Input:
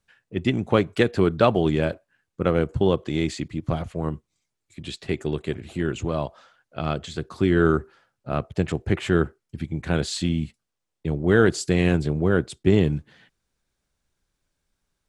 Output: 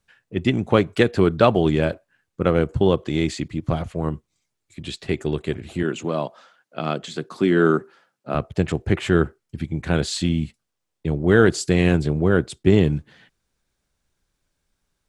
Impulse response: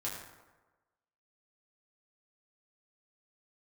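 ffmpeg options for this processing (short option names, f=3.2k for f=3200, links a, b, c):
-filter_complex "[0:a]asettb=1/sr,asplit=3[a][b][c];[a]atrim=end=5.834[d];[b]atrim=start=5.83:end=8.35,asetpts=PTS-STARTPTS,afade=t=in:d=0.004:c=qsin,afade=t=out:st=2.516:d=0.004:c=qsin,highpass=f=160:w=0.5412,highpass=f=160:w=1.3066[e];[c]atrim=start=8.346[f];[d][e]acrossfade=d=0.004:c1=hsin:c2=qsin[g];[g][f]acrossfade=d=0.004:c1=qsin:c2=hsin,volume=2.5dB"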